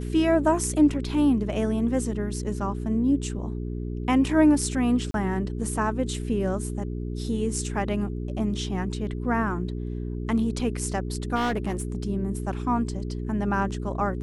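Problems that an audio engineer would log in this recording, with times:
hum 60 Hz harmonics 7 -31 dBFS
5.11–5.14 s: dropout 32 ms
11.35–12.03 s: clipped -22 dBFS

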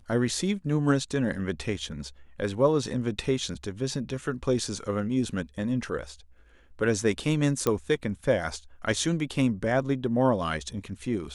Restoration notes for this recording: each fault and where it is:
7.67 s: pop -11 dBFS

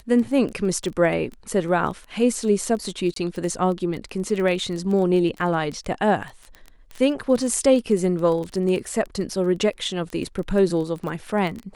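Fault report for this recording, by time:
crackle 14 per s -27 dBFS
3.14–3.16 s: dropout 23 ms

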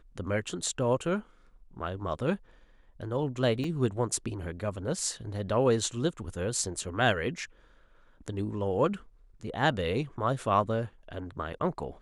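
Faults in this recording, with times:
3.64 s: dropout 2.8 ms

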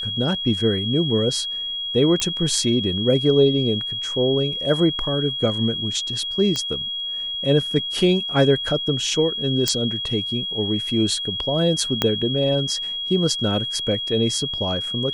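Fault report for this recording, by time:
whine 3.3 kHz -25 dBFS
2.20 s: pop -8 dBFS
6.56 s: pop -11 dBFS
9.68 s: pop -5 dBFS
12.02 s: pop -4 dBFS

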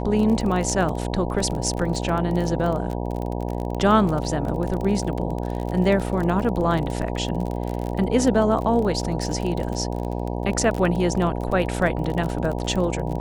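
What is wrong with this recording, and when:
buzz 60 Hz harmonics 16 -27 dBFS
crackle 32 per s -26 dBFS

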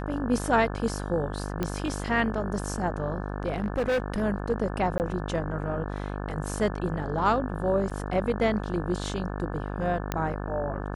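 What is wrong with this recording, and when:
buzz 50 Hz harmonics 35 -33 dBFS
1.63 s: pop -14 dBFS
3.52–4.22 s: clipped -22 dBFS
4.98–5.00 s: dropout 19 ms
7.90–7.91 s: dropout 7.2 ms
10.12 s: pop -12 dBFS

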